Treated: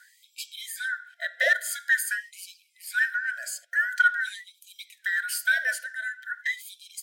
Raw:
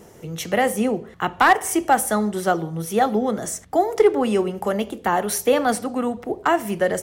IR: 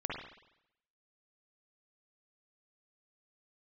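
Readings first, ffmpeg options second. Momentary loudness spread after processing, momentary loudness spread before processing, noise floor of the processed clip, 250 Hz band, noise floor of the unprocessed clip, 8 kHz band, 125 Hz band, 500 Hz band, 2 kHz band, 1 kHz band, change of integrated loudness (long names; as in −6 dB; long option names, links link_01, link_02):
20 LU, 8 LU, −65 dBFS, below −40 dB, −46 dBFS, −6.0 dB, below −40 dB, −22.0 dB, +3.5 dB, −16.5 dB, −5.5 dB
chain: -af "afftfilt=real='real(if(lt(b,960),b+48*(1-2*mod(floor(b/48),2)),b),0)':imag='imag(if(lt(b,960),b+48*(1-2*mod(floor(b/48),2)),b),0)':win_size=2048:overlap=0.75,afftfilt=real='re*(1-between(b*sr/4096,700,1400))':imag='im*(1-between(b*sr/4096,700,1400))':win_size=4096:overlap=0.75,afftfilt=real='re*gte(b*sr/1024,480*pow(2300/480,0.5+0.5*sin(2*PI*0.47*pts/sr)))':imag='im*gte(b*sr/1024,480*pow(2300/480,0.5+0.5*sin(2*PI*0.47*pts/sr)))':win_size=1024:overlap=0.75,volume=-5.5dB"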